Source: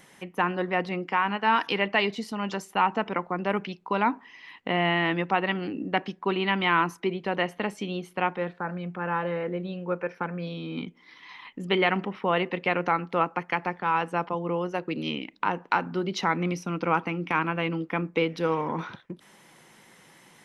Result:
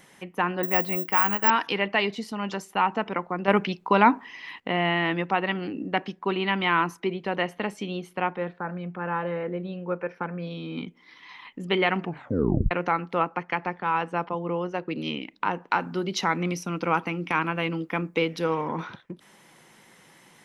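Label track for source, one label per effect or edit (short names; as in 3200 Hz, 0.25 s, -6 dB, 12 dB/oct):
0.630000	1.500000	careless resampling rate divided by 2×, down filtered, up zero stuff
3.480000	4.600000	gain +6.5 dB
8.180000	10.510000	high shelf 3600 Hz -6.5 dB
12.000000	12.000000	tape stop 0.71 s
13.220000	14.960000	air absorption 56 m
15.810000	18.440000	high shelf 5700 Hz +10 dB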